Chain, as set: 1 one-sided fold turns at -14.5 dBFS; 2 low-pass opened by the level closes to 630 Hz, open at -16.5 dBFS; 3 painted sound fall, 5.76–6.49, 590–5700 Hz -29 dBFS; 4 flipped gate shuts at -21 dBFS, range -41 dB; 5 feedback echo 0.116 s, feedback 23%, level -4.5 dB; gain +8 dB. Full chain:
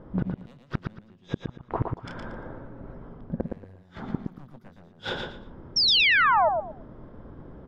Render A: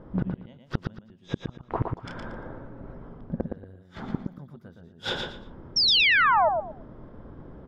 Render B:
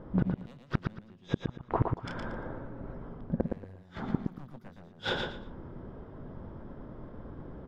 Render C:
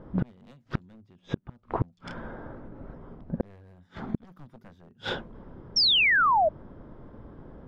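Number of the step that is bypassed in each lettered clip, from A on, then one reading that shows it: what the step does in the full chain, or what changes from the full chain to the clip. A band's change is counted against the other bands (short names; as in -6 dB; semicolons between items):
1, distortion -2 dB; 3, 125 Hz band +13.5 dB; 5, loudness change -1.5 LU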